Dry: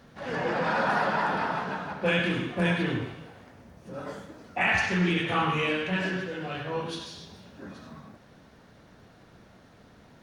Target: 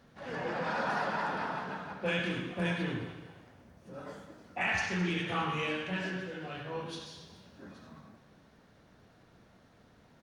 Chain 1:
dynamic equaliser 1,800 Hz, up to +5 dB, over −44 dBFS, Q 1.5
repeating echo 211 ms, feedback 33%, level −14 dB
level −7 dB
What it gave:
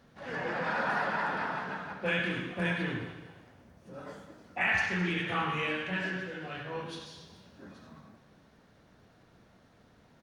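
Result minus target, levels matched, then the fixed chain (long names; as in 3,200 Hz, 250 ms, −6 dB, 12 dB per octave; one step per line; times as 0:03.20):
8,000 Hz band −5.5 dB
dynamic equaliser 5,900 Hz, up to +5 dB, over −44 dBFS, Q 1.5
repeating echo 211 ms, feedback 33%, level −14 dB
level −7 dB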